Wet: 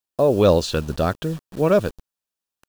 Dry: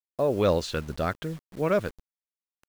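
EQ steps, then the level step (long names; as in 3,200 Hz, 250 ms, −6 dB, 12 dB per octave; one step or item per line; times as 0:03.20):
notch filter 2,100 Hz, Q 5.4
dynamic equaliser 1,600 Hz, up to −5 dB, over −42 dBFS, Q 1.2
+8.0 dB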